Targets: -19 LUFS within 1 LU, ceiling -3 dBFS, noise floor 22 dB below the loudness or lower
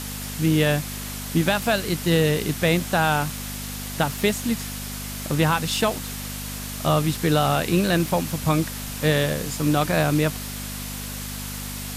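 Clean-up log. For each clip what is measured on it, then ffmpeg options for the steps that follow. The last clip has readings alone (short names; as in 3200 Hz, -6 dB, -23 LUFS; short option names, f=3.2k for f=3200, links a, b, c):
hum 50 Hz; harmonics up to 250 Hz; hum level -33 dBFS; noise floor -32 dBFS; noise floor target -46 dBFS; loudness -23.5 LUFS; peak -7.0 dBFS; loudness target -19.0 LUFS
-> -af "bandreject=f=50:t=h:w=4,bandreject=f=100:t=h:w=4,bandreject=f=150:t=h:w=4,bandreject=f=200:t=h:w=4,bandreject=f=250:t=h:w=4"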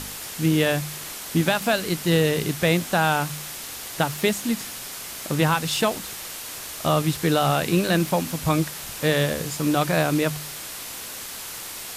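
hum none; noise floor -36 dBFS; noise floor target -46 dBFS
-> -af "afftdn=nr=10:nf=-36"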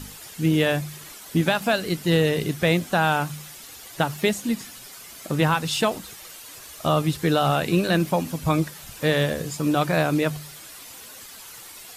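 noise floor -43 dBFS; noise floor target -45 dBFS
-> -af "afftdn=nr=6:nf=-43"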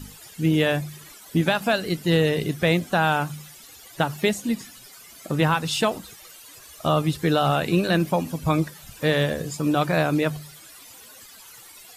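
noise floor -46 dBFS; loudness -23.5 LUFS; peak -8.0 dBFS; loudness target -19.0 LUFS
-> -af "volume=4.5dB"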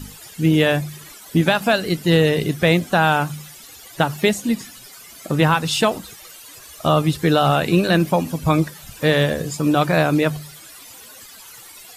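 loudness -19.0 LUFS; peak -3.5 dBFS; noise floor -42 dBFS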